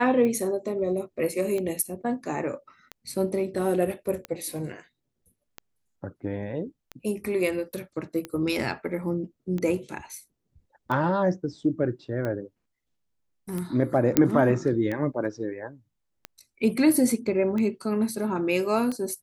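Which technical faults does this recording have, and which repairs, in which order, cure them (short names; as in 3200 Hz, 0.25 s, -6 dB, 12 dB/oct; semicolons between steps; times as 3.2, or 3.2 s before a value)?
tick 45 rpm -19 dBFS
14.17 pop -4 dBFS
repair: de-click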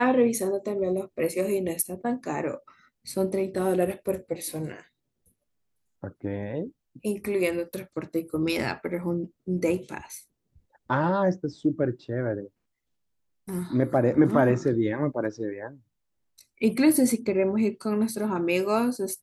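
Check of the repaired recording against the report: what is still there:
none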